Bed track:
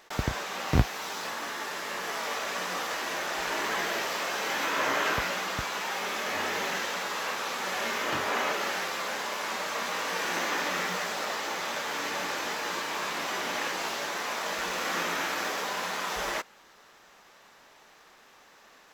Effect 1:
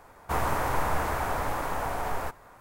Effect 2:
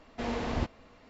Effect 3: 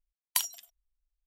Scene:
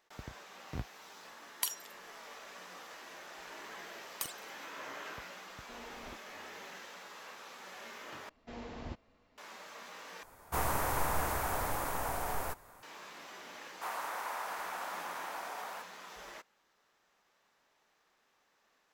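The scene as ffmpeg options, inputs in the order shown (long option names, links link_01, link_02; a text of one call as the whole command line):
ffmpeg -i bed.wav -i cue0.wav -i cue1.wav -i cue2.wav -filter_complex "[3:a]asplit=2[link_01][link_02];[2:a]asplit=2[link_03][link_04];[1:a]asplit=2[link_05][link_06];[0:a]volume=-17.5dB[link_07];[link_02]aeval=exprs='val(0)*sin(2*PI*1700*n/s+1700*0.65/4.9*sin(2*PI*4.9*n/s))':channel_layout=same[link_08];[link_03]equalizer=frequency=91:width=0.59:gain=-13[link_09];[link_05]highshelf=frequency=5500:gain=11.5[link_10];[link_06]highpass=760[link_11];[link_07]asplit=3[link_12][link_13][link_14];[link_12]atrim=end=8.294[link_15];[link_04]atrim=end=1.09,asetpts=PTS-STARTPTS,volume=-12.5dB[link_16];[link_13]atrim=start=9.376:end=10.234[link_17];[link_10]atrim=end=2.6,asetpts=PTS-STARTPTS,volume=-6dB[link_18];[link_14]atrim=start=12.826[link_19];[link_01]atrim=end=1.26,asetpts=PTS-STARTPTS,volume=-6dB,afade=type=in:duration=0.004:curve=hsin,afade=type=out:start_time=1.256:duration=0.004:curve=hsin,adelay=1270[link_20];[link_08]atrim=end=1.26,asetpts=PTS-STARTPTS,volume=-8.5dB,afade=type=in:duration=0.004:curve=hsin,afade=type=out:start_time=1.256:duration=0.004:curve=hsin,adelay=169785S[link_21];[link_09]atrim=end=1.09,asetpts=PTS-STARTPTS,volume=-15dB,afade=type=in:duration=0.004:curve=hsin,afade=type=out:start_time=1.086:duration=0.004:curve=hsin,adelay=5500[link_22];[link_11]atrim=end=2.6,asetpts=PTS-STARTPTS,volume=-8.5dB,afade=type=in:duration=0.004:curve=hsin,afade=type=out:start_time=2.596:duration=0.004:curve=hsin,adelay=13520[link_23];[link_15][link_16]acrossfade=duration=0.004:curve1=hsin:curve2=hsin[link_24];[link_24][link_17]acrossfade=duration=0.004:curve1=hsin:curve2=hsin[link_25];[link_25][link_18]acrossfade=duration=0.004:curve1=hsin:curve2=hsin[link_26];[link_26][link_19]acrossfade=duration=0.004:curve1=hsin:curve2=hsin[link_27];[link_27][link_20][link_21][link_22][link_23]amix=inputs=5:normalize=0" out.wav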